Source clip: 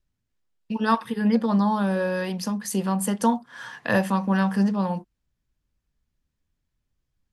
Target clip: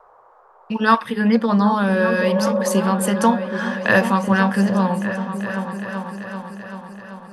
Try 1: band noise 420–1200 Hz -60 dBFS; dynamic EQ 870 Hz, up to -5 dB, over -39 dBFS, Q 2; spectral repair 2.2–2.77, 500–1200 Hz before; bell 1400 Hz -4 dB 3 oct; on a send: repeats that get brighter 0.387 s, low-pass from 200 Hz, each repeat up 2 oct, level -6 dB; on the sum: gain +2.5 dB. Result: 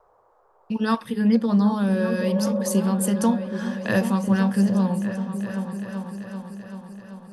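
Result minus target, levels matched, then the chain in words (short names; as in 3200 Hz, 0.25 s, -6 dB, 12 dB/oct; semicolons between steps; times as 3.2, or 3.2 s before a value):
1000 Hz band -7.0 dB
band noise 420–1200 Hz -60 dBFS; dynamic EQ 870 Hz, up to -5 dB, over -39 dBFS, Q 2; spectral repair 2.2–2.77, 500–1200 Hz before; bell 1400 Hz +8 dB 3 oct; on a send: repeats that get brighter 0.387 s, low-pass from 200 Hz, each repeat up 2 oct, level -6 dB; on the sum: gain +2.5 dB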